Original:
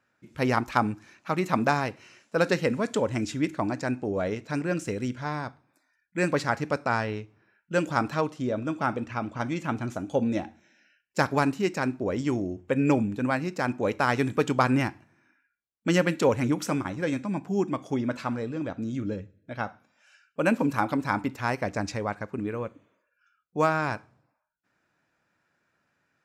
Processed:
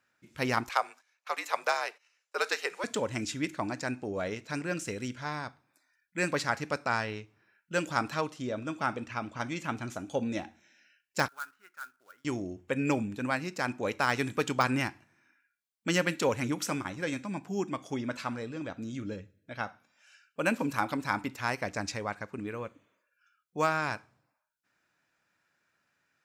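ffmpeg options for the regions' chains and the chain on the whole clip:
ffmpeg -i in.wav -filter_complex "[0:a]asettb=1/sr,asplit=3[link_01][link_02][link_03];[link_01]atrim=end=0.694[link_04];[link_02]atrim=start=0.69:end=2.84,asetpts=PTS-STARTPTS,afade=type=in:duration=0.004:curve=qsin,afade=type=out:start_time=2.146:duration=0.004:curve=qsin,agate=range=-18dB:threshold=-50dB:ratio=16:release=100:detection=peak,afreqshift=-69,highpass=frequency=470:width=0.5412,highpass=frequency=470:width=1.3066[link_05];[link_03]atrim=start=2.836[link_06];[link_04][link_05]acrossfade=duration=0.004:curve1=hsin:curve2=qsin[link_07];[link_07][link_06]acrossfade=duration=0.004:curve1=qsin:curve2=hsin,asettb=1/sr,asplit=3[link_08][link_09][link_10];[link_08]atrim=end=11.284[link_11];[link_09]atrim=start=11.28:end=12.25,asetpts=PTS-STARTPTS,afade=type=in:duration=0.004:curve=qsin,afade=type=out:start_time=0.966:duration=0.004:curve=qsin,bandpass=frequency=1400:width_type=q:width=15,acrusher=bits=3:mode=log:mix=0:aa=0.000001[link_12];[link_10]atrim=start=12.246[link_13];[link_11][link_12]acrossfade=duration=0.004:curve1=hsin:curve2=qsin[link_14];[link_14][link_13]acrossfade=duration=0.004:curve1=qsin:curve2=hsin,deesser=0.55,tiltshelf=frequency=1300:gain=-4.5,volume=-2.5dB" out.wav

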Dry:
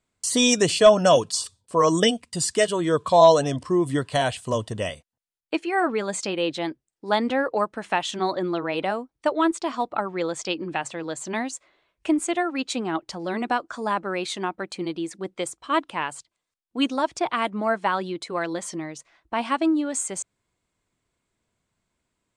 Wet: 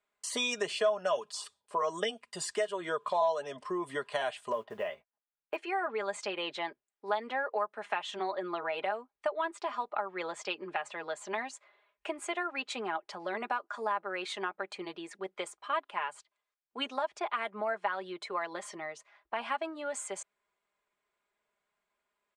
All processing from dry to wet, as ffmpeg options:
ffmpeg -i in.wav -filter_complex "[0:a]asettb=1/sr,asplit=3[link_01][link_02][link_03];[link_01]atrim=end=4.524[link_04];[link_02]atrim=start=4.52:end=5.56,asetpts=PTS-STARTPTS,afade=type=in:duration=0.004:curve=qsin,afade=type=out:start_time=1.036:duration=0.004:curve=qsin,lowpass=2100,acrusher=bits=7:mode=log:mix=0:aa=0.000001,asplit=2[link_05][link_06];[link_06]adelay=18,volume=-13.5dB[link_07];[link_05][link_07]amix=inputs=2:normalize=0,atrim=end_sample=45864[link_08];[link_03]atrim=start=5.556[link_09];[link_04][link_08]acrossfade=duration=0.004:curve1=hsin:curve2=qsin[link_10];[link_10][link_09]acrossfade=duration=0.004:curve1=qsin:curve2=hsin,acrossover=split=450 3000:gain=0.0891 1 0.251[link_11][link_12][link_13];[link_11][link_12][link_13]amix=inputs=3:normalize=0,aecho=1:1:4.9:0.63,acompressor=threshold=-30dB:ratio=2.5,volume=-2dB" out.wav

